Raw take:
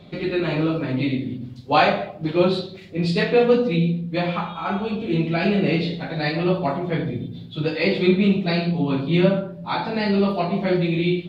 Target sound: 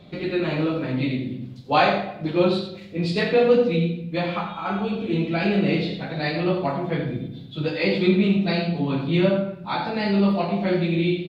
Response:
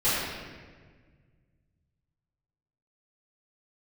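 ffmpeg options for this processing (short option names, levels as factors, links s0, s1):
-filter_complex "[0:a]aecho=1:1:85:0.335,asplit=2[s0][s1];[1:a]atrim=start_sample=2205,afade=t=out:st=0.4:d=0.01,atrim=end_sample=18081[s2];[s1][s2]afir=irnorm=-1:irlink=0,volume=0.0299[s3];[s0][s3]amix=inputs=2:normalize=0,volume=0.794"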